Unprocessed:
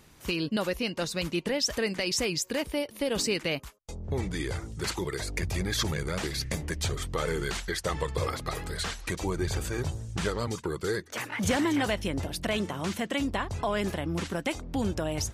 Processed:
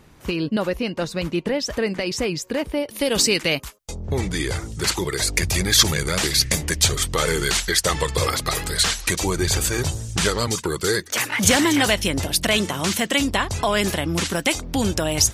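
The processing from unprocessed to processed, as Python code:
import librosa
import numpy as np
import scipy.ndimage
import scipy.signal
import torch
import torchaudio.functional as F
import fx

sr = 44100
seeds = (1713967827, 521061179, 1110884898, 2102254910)

y = fx.high_shelf(x, sr, hz=2500.0, db=fx.steps((0.0, -8.5), (2.87, 6.0), (5.19, 11.0)))
y = F.gain(torch.from_numpy(y), 7.0).numpy()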